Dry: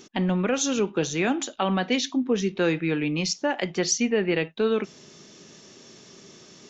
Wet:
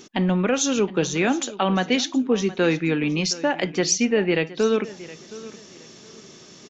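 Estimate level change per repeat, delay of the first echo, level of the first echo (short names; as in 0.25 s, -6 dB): -11.5 dB, 0.718 s, -18.0 dB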